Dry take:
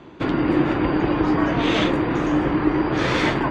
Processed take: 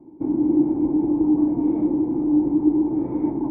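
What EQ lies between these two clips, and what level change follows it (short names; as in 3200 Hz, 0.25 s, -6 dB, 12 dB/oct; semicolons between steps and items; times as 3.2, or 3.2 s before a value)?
vocal tract filter u; +3.5 dB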